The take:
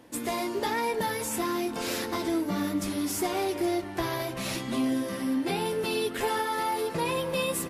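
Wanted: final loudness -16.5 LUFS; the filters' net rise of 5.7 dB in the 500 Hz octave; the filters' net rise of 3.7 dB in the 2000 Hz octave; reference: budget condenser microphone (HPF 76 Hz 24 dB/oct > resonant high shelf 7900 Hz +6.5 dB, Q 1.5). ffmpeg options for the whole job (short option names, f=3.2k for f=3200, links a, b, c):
-af "highpass=f=76:w=0.5412,highpass=f=76:w=1.3066,equalizer=f=500:t=o:g=7,equalizer=f=2k:t=o:g=4.5,highshelf=f=7.9k:t=q:w=1.5:g=6.5,volume=9dB"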